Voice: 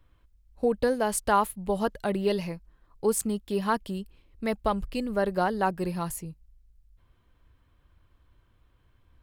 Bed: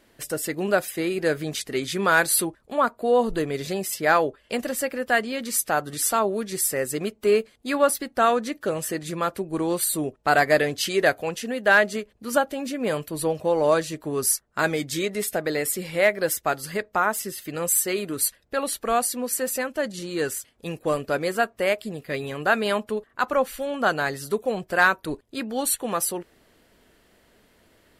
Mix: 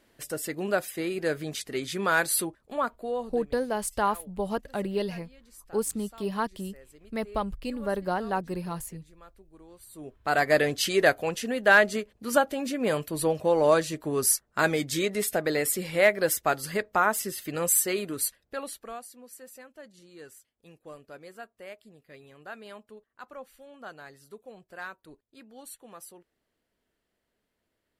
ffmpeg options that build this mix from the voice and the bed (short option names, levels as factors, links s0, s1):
-filter_complex "[0:a]adelay=2700,volume=0.708[s0];[1:a]volume=11.2,afade=t=out:st=2.65:d=0.85:silence=0.0794328,afade=t=in:st=9.9:d=0.79:silence=0.0501187,afade=t=out:st=17.69:d=1.33:silence=0.1[s1];[s0][s1]amix=inputs=2:normalize=0"